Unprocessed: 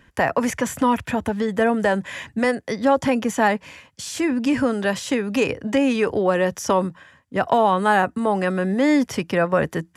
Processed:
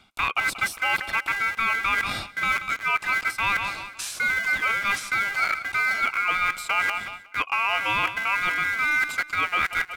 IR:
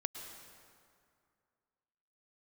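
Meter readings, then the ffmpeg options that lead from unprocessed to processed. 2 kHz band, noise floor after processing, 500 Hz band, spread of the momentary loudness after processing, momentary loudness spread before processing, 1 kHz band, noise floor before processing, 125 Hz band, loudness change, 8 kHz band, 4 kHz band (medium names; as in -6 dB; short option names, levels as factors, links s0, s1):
+5.5 dB, -46 dBFS, -21.5 dB, 4 LU, 6 LU, -3.5 dB, -58 dBFS, -14.0 dB, -2.5 dB, -3.0 dB, +2.5 dB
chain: -filter_complex "[0:a]acrossover=split=350|3100[s0][s1][s2];[s0]acrusher=bits=4:mix=0:aa=0.000001[s3];[s1]tiltshelf=f=1200:g=8[s4];[s3][s4][s2]amix=inputs=3:normalize=0,aecho=1:1:184|368|552:0.133|0.0493|0.0183,areverse,acompressor=threshold=0.0447:ratio=5,areverse[s5];[1:a]atrim=start_sample=2205,atrim=end_sample=3087,asetrate=38808,aresample=44100[s6];[s5][s6]afir=irnorm=-1:irlink=0,aeval=exprs='val(0)*sin(2*PI*1800*n/s)':c=same,volume=2.51"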